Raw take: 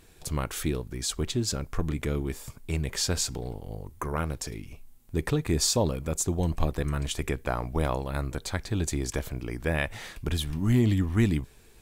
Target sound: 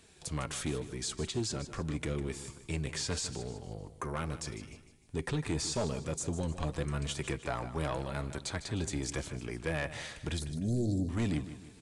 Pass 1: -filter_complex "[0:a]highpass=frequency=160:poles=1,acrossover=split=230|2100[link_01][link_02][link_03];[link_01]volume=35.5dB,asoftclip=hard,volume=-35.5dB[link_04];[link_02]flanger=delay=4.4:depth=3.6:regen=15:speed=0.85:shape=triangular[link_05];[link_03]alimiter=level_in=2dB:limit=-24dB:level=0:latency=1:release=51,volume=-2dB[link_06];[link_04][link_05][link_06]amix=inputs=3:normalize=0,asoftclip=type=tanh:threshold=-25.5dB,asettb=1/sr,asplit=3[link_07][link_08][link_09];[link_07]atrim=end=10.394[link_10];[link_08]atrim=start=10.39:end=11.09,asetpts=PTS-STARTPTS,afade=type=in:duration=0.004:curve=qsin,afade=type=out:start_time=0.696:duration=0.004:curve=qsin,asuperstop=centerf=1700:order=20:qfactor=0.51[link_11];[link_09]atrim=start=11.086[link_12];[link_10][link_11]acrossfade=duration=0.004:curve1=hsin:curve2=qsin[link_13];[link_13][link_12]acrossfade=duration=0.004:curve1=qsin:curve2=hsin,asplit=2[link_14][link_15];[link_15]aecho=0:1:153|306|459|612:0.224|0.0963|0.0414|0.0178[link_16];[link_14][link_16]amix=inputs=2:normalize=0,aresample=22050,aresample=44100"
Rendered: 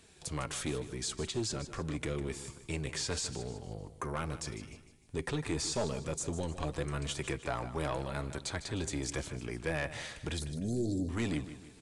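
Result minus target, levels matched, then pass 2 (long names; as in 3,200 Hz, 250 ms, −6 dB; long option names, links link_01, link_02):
gain into a clipping stage and back: distortion +9 dB
-filter_complex "[0:a]highpass=frequency=160:poles=1,acrossover=split=230|2100[link_01][link_02][link_03];[link_01]volume=27dB,asoftclip=hard,volume=-27dB[link_04];[link_02]flanger=delay=4.4:depth=3.6:regen=15:speed=0.85:shape=triangular[link_05];[link_03]alimiter=level_in=2dB:limit=-24dB:level=0:latency=1:release=51,volume=-2dB[link_06];[link_04][link_05][link_06]amix=inputs=3:normalize=0,asoftclip=type=tanh:threshold=-25.5dB,asettb=1/sr,asplit=3[link_07][link_08][link_09];[link_07]atrim=end=10.394[link_10];[link_08]atrim=start=10.39:end=11.09,asetpts=PTS-STARTPTS,afade=type=in:duration=0.004:curve=qsin,afade=type=out:start_time=0.696:duration=0.004:curve=qsin,asuperstop=centerf=1700:order=20:qfactor=0.51[link_11];[link_09]atrim=start=11.086[link_12];[link_10][link_11]acrossfade=duration=0.004:curve1=hsin:curve2=qsin[link_13];[link_13][link_12]acrossfade=duration=0.004:curve1=qsin:curve2=hsin,asplit=2[link_14][link_15];[link_15]aecho=0:1:153|306|459|612:0.224|0.0963|0.0414|0.0178[link_16];[link_14][link_16]amix=inputs=2:normalize=0,aresample=22050,aresample=44100"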